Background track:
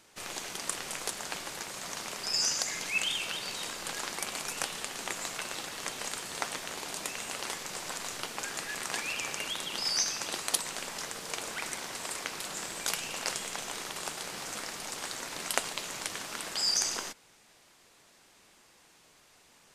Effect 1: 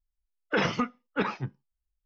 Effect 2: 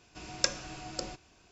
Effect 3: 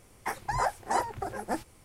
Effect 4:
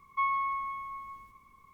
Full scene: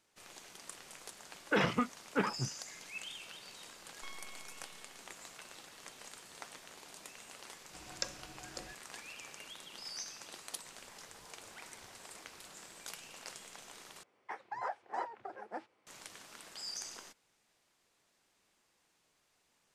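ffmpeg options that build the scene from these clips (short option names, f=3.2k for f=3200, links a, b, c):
-filter_complex "[3:a]asplit=2[a][b];[0:a]volume=-14.5dB[c];[1:a]afwtdn=0.01[d];[4:a]aeval=exprs='abs(val(0))':c=same[e];[a]acompressor=threshold=-46dB:ratio=6:attack=3.2:release=140:knee=1:detection=peak[f];[b]highpass=370,lowpass=3.1k[g];[c]asplit=2[h][i];[h]atrim=end=14.034[j];[g]atrim=end=1.84,asetpts=PTS-STARTPTS,volume=-10dB[k];[i]atrim=start=15.866[l];[d]atrim=end=2.05,asetpts=PTS-STARTPTS,volume=-4dB,afade=t=in:d=0.004:c=hsin,afade=t=out:st=2.046:d=0.004:c=hsin,adelay=990[m];[e]atrim=end=1.73,asetpts=PTS-STARTPTS,volume=-17.5dB,afade=t=in:d=0.004:c=hsin,afade=t=out:st=1.726:d=0.004:c=hsin,adelay=169785S[n];[2:a]atrim=end=1.51,asetpts=PTS-STARTPTS,volume=-10dB,afade=t=in:d=0.004:c=hsin,afade=t=out:st=1.506:d=0.004:c=hsin,adelay=7580[o];[f]atrim=end=1.84,asetpts=PTS-STARTPTS,volume=-15dB,afade=t=in:d=0.004:c=hsin,afade=t=out:st=1.836:d=0.004:c=hsin,adelay=470106S[p];[j][k]acrossfade=d=0.004:c1=hsin:c2=hsin[q];[q][l]acrossfade=d=0.004:c1=hsin:c2=hsin[r];[r][m][n][o][p]amix=inputs=5:normalize=0"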